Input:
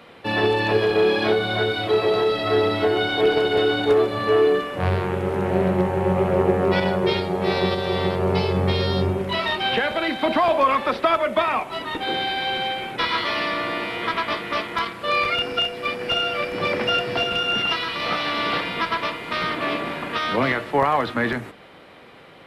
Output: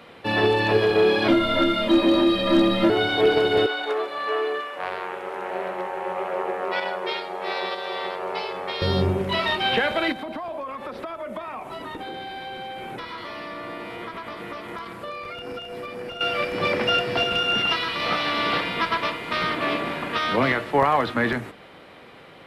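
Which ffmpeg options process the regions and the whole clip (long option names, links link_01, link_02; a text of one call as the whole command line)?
ffmpeg -i in.wav -filter_complex "[0:a]asettb=1/sr,asplit=3[link_01][link_02][link_03];[link_01]atrim=end=1.284[link_04];[link_02]atrim=start=1.28:end=2.9,asetpts=PTS-STARTPTS,afade=type=in:duration=0.004:curve=qsin,afade=type=out:start_time=1.616:duration=0.004:curve=qsin,aecho=1:1:2.8:0.49,atrim=end_sample=71442,afreqshift=-99,asoftclip=type=hard:threshold=-10.5dB[link_05];[link_03]atrim=start=2.896[link_06];[link_04][link_05]acrossfade=duration=0.004:curve1=hsin:curve2=qsin[link_07];[link_07][link_06]acrossfade=duration=0.004:curve1=qsin:curve2=hsin,asettb=1/sr,asplit=3[link_08][link_09][link_10];[link_08]atrim=end=3.664[link_11];[link_09]atrim=start=3.66:end=8.82,asetpts=PTS-STARTPTS,afade=type=in:duration=0.004:curve=qsin,afade=type=out:start_time=5.156:duration=0.004:curve=qsin,highpass=720,highshelf=frequency=3700:gain=-8[link_12];[link_10]atrim=start=8.816[link_13];[link_11][link_12]acrossfade=duration=0.004:curve1=hsin:curve2=qsin[link_14];[link_14][link_13]acrossfade=duration=0.004:curve1=qsin:curve2=hsin,asettb=1/sr,asplit=3[link_15][link_16][link_17];[link_15]atrim=end=10.124[link_18];[link_16]atrim=start=10.12:end=16.21,asetpts=PTS-STARTPTS,afade=type=in:duration=0.004:curve=qsin,afade=type=out:start_time=6.086:duration=0.004:curve=qsin,acompressor=threshold=-28dB:ratio=8:attack=3.2:release=140:knee=1:detection=peak,equalizer=frequency=3300:width_type=o:width=2.2:gain=-7[link_19];[link_17]atrim=start=16.206[link_20];[link_18][link_19]acrossfade=duration=0.004:curve1=hsin:curve2=qsin[link_21];[link_21][link_20]acrossfade=duration=0.004:curve1=qsin:curve2=hsin" out.wav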